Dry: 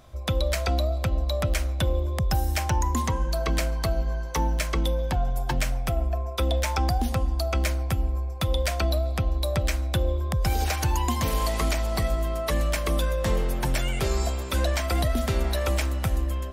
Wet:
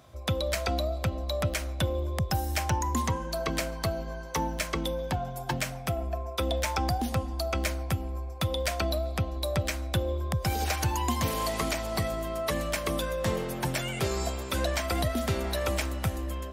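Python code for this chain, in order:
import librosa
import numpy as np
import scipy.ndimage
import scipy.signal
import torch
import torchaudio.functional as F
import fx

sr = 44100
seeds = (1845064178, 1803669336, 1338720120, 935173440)

y = scipy.signal.sosfilt(scipy.signal.butter(4, 74.0, 'highpass', fs=sr, output='sos'), x)
y = y * librosa.db_to_amplitude(-1.5)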